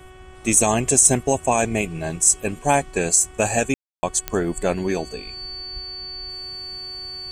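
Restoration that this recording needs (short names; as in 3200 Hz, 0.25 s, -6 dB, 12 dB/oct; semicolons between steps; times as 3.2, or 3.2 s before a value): de-click; de-hum 372.2 Hz, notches 9; notch 4500 Hz, Q 30; room tone fill 3.74–4.03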